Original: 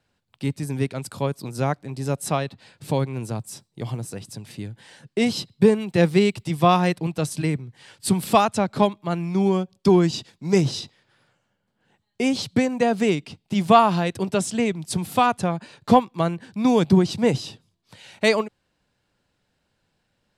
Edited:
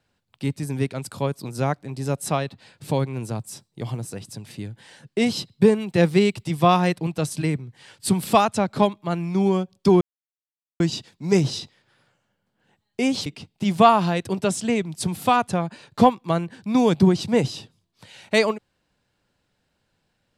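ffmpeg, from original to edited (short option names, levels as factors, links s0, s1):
-filter_complex "[0:a]asplit=3[s0][s1][s2];[s0]atrim=end=10.01,asetpts=PTS-STARTPTS,afade=t=out:st=10.006:d=0.004:c=hsin,apad=pad_dur=0.79[s3];[s1]atrim=start=10.01:end=12.472,asetpts=PTS-STARTPTS,afade=t=in:d=0.004:c=hsin[s4];[s2]atrim=start=13.158[s5];[s3][s4]concat=n=2:v=0:a=1[s6];[s6][s5]acrossfade=d=0.004:c1=hsin:c2=hsin"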